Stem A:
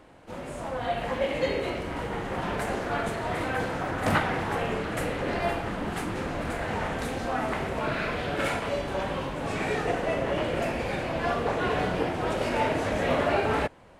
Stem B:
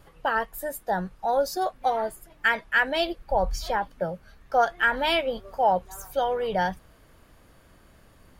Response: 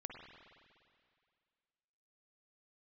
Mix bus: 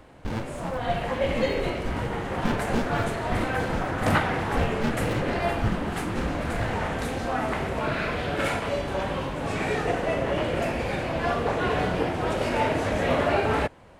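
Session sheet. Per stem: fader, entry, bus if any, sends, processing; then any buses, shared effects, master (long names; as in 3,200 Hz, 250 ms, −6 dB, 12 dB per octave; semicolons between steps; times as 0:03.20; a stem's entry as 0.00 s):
+1.5 dB, 0.00 s, no send, parametric band 78 Hz +3 dB 1.6 octaves
−1.5 dB, 0.00 s, no send, ring modulation 780 Hz; windowed peak hold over 65 samples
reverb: not used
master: no processing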